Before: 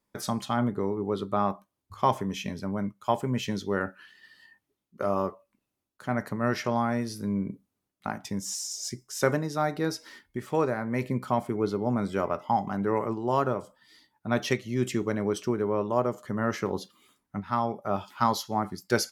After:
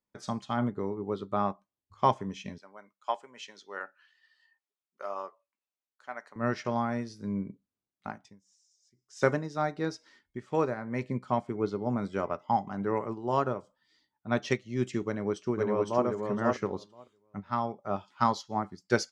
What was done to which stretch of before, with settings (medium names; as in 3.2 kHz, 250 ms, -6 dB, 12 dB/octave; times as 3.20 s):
2.58–6.36 s: high-pass 680 Hz
8.11–9.22 s: dip -21.5 dB, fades 0.28 s
15.05–16.05 s: echo throw 510 ms, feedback 20%, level -2.5 dB
whole clip: low-pass 7.6 kHz 24 dB/octave; upward expansion 1.5:1, over -43 dBFS